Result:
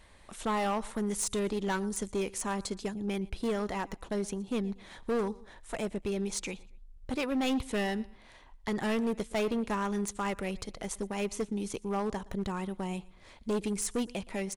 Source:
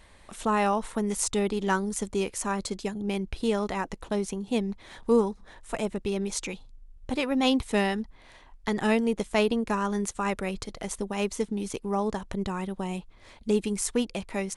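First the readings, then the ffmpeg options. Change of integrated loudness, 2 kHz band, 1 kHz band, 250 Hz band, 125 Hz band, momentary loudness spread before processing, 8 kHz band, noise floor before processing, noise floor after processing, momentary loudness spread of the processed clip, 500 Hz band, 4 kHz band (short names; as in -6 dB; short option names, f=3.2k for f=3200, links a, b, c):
-5.0 dB, -5.0 dB, -5.5 dB, -4.5 dB, -4.0 dB, 10 LU, -3.5 dB, -54 dBFS, -56 dBFS, 8 LU, -5.0 dB, -5.5 dB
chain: -af "aecho=1:1:118|236:0.0668|0.0221,asoftclip=type=hard:threshold=-23dB,volume=-3dB"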